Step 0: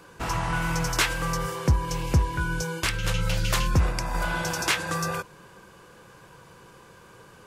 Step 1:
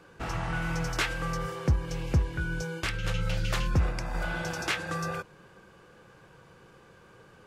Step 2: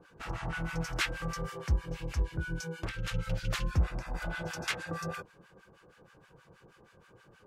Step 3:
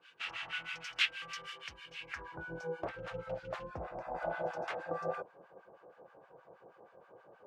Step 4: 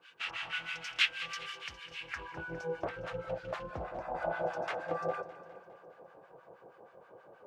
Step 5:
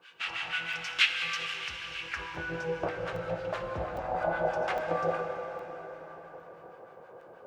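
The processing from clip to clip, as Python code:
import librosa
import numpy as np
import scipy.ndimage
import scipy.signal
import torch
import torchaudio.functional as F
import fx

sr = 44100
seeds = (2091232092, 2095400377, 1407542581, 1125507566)

y1 = fx.high_shelf(x, sr, hz=6000.0, db=-11.5)
y1 = fx.notch(y1, sr, hz=1000.0, q=9.3)
y1 = F.gain(torch.from_numpy(y1), -3.5).numpy()
y2 = fx.harmonic_tremolo(y1, sr, hz=6.3, depth_pct=100, crossover_hz=1000.0)
y3 = fx.rider(y2, sr, range_db=3, speed_s=0.5)
y3 = fx.filter_sweep_bandpass(y3, sr, from_hz=2900.0, to_hz=660.0, start_s=1.97, end_s=2.47, q=2.7)
y3 = F.gain(torch.from_numpy(y3), 8.0).numpy()
y4 = fx.echo_feedback(y3, sr, ms=204, feedback_pct=57, wet_db=-15)
y4 = F.gain(torch.from_numpy(y4), 2.5).numpy()
y5 = fx.rev_plate(y4, sr, seeds[0], rt60_s=4.9, hf_ratio=0.75, predelay_ms=0, drr_db=4.0)
y5 = fx.buffer_crackle(y5, sr, first_s=0.73, period_s=0.81, block=128, kind='zero')
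y5 = F.gain(torch.from_numpy(y5), 3.5).numpy()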